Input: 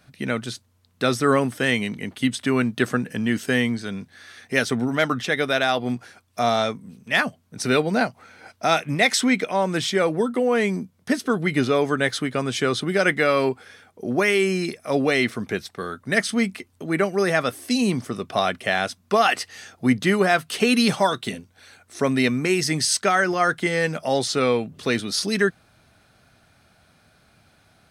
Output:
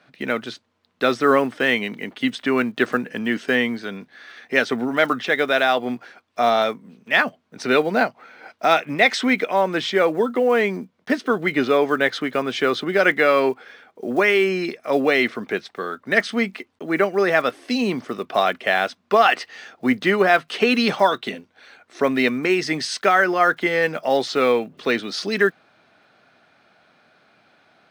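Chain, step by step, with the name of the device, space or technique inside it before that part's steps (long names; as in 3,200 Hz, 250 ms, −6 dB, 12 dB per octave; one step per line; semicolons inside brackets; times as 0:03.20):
early digital voice recorder (band-pass filter 280–3,500 Hz; one scale factor per block 7 bits)
level +3.5 dB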